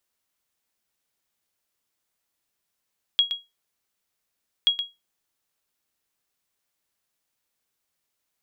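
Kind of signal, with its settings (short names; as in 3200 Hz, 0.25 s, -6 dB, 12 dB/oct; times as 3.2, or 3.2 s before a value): sonar ping 3300 Hz, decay 0.21 s, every 1.48 s, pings 2, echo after 0.12 s, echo -9.5 dB -11 dBFS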